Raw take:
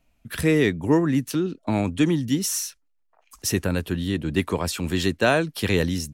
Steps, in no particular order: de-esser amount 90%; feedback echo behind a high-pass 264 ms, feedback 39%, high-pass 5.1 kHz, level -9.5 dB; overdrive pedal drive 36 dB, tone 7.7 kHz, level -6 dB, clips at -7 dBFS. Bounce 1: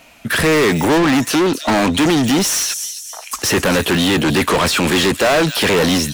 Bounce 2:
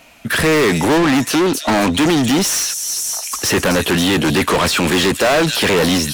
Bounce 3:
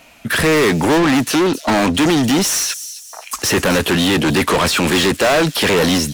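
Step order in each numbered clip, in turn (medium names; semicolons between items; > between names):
de-esser > feedback echo behind a high-pass > overdrive pedal; feedback echo behind a high-pass > de-esser > overdrive pedal; de-esser > overdrive pedal > feedback echo behind a high-pass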